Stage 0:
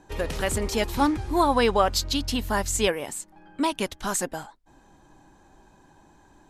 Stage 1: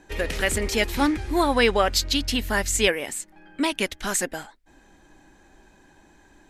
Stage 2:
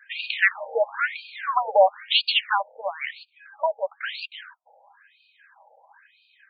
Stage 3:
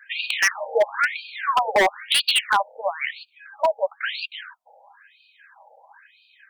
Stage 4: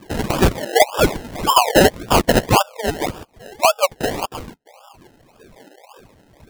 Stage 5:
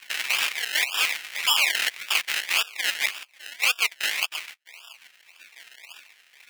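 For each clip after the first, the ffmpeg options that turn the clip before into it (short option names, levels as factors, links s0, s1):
-af "equalizer=f=125:t=o:w=1:g=-7,equalizer=f=1000:t=o:w=1:g=-7,equalizer=f=2000:t=o:w=1:g=7,volume=1.33"
-af "afftfilt=real='re*between(b*sr/1024,630*pow(3400/630,0.5+0.5*sin(2*PI*1*pts/sr))/1.41,630*pow(3400/630,0.5+0.5*sin(2*PI*1*pts/sr))*1.41)':imag='im*between(b*sr/1024,630*pow(3400/630,0.5+0.5*sin(2*PI*1*pts/sr))/1.41,630*pow(3400/630,0.5+0.5*sin(2*PI*1*pts/sr))*1.41)':win_size=1024:overlap=0.75,volume=2.51"
-af "aeval=exprs='0.188*(abs(mod(val(0)/0.188+3,4)-2)-1)':c=same,volume=1.58"
-af "acrusher=samples=30:mix=1:aa=0.000001:lfo=1:lforange=18:lforate=1.8,volume=2"
-af "aeval=exprs='0.596*sin(PI/2*2.51*val(0)/0.596)':c=same,highpass=f=2300:t=q:w=2.8,aeval=exprs='val(0)*sin(2*PI*130*n/s)':c=same,volume=0.473"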